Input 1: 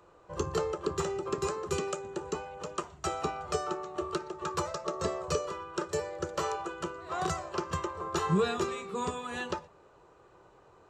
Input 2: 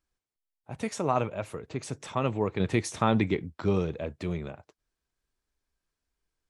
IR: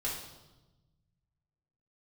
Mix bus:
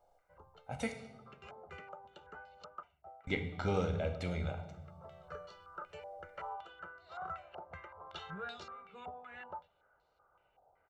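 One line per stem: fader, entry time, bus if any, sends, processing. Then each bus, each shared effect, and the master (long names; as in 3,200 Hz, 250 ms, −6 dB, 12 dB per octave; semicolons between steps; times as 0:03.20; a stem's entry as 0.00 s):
−17.0 dB, 0.00 s, no send, low-pass on a step sequencer 5.3 Hz 750–4,400 Hz; automatic ducking −17 dB, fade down 0.60 s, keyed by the second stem
−5.0 dB, 0.00 s, muted 0:00.92–0:03.27, send −5 dB, no processing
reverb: on, RT60 1.1 s, pre-delay 4 ms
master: parametric band 140 Hz −7 dB 1.4 octaves; comb filter 1.4 ms, depth 66%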